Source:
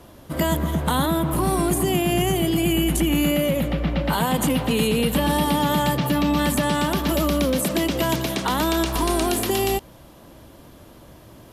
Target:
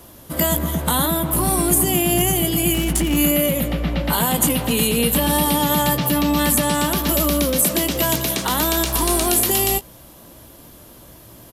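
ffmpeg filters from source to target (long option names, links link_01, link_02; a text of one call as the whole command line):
ffmpeg -i in.wav -filter_complex "[0:a]aemphasis=mode=production:type=50kf,asettb=1/sr,asplit=3[link_01][link_02][link_03];[link_01]atrim=end=2.744[link_04];[link_02]atrim=start=2.74:end=3.17,asetpts=PTS-STARTPTS,afade=type=in:duration=0.004:curve=qsin,afade=type=out:start_time=0.426:duration=0.004:curve=qsin,adynamicsmooth=sensitivity=5:basefreq=1500[link_05];[link_03]atrim=start=3.166[link_06];[link_04][link_05]acrossfade=duration=0.004:curve1=hsin:curve2=qsin[link_07];[link_07][link_06]acrossfade=duration=0.004:curve1=qsin:curve2=hsin,asplit=2[link_08][link_09];[link_09]adelay=17,volume=-11dB[link_10];[link_08][link_10]amix=inputs=2:normalize=0" out.wav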